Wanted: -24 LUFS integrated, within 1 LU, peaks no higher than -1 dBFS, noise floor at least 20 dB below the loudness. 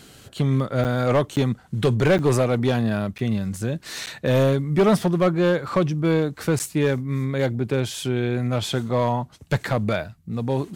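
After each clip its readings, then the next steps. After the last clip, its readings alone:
clipped 1.1%; flat tops at -12.5 dBFS; dropouts 6; longest dropout 8.9 ms; loudness -22.5 LUFS; peak -12.5 dBFS; loudness target -24.0 LUFS
-> clip repair -12.5 dBFS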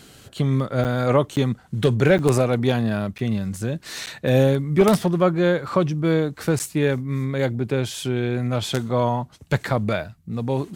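clipped 0.0%; dropouts 6; longest dropout 8.9 ms
-> interpolate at 0.84/1.36/2.18/3.18/4.06/6.59, 8.9 ms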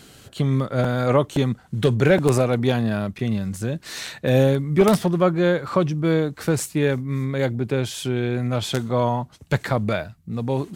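dropouts 0; loudness -22.0 LUFS; peak -3.5 dBFS; loudness target -24.0 LUFS
-> gain -2 dB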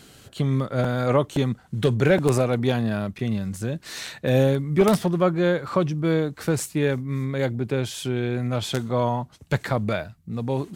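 loudness -24.0 LUFS; peak -5.5 dBFS; noise floor -52 dBFS

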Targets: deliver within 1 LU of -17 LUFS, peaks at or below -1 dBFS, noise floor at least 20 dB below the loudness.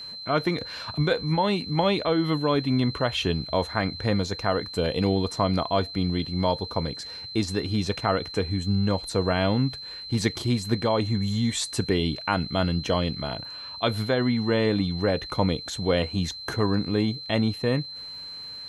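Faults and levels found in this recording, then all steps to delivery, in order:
ticks 34/s; steady tone 4100 Hz; tone level -36 dBFS; loudness -26.0 LUFS; peak -8.5 dBFS; loudness target -17.0 LUFS
-> de-click; notch 4100 Hz, Q 30; gain +9 dB; limiter -1 dBFS

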